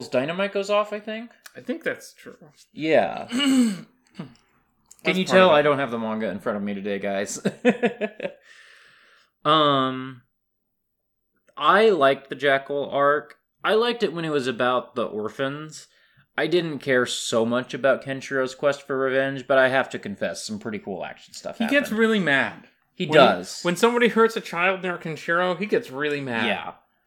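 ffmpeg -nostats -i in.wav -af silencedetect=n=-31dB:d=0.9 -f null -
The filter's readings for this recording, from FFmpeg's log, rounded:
silence_start: 8.28
silence_end: 9.45 | silence_duration: 1.17
silence_start: 10.11
silence_end: 11.57 | silence_duration: 1.46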